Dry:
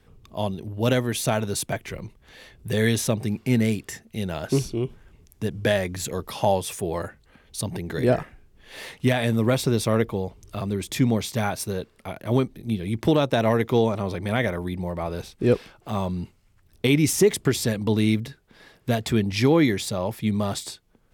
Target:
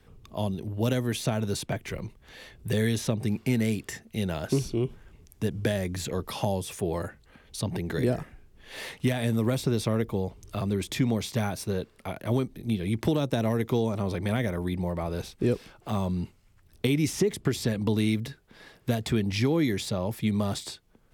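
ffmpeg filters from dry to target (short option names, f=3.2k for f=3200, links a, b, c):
-filter_complex "[0:a]acrossover=split=380|5100[a][b][c];[a]acompressor=threshold=-23dB:ratio=4[d];[b]acompressor=threshold=-32dB:ratio=4[e];[c]acompressor=threshold=-41dB:ratio=4[f];[d][e][f]amix=inputs=3:normalize=0"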